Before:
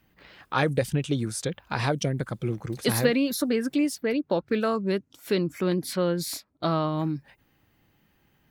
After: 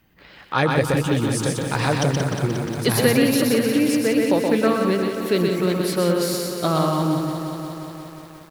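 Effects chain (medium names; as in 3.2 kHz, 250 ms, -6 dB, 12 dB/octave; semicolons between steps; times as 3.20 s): delay 124 ms -4 dB; bit-crushed delay 178 ms, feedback 80%, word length 8-bit, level -8 dB; trim +4 dB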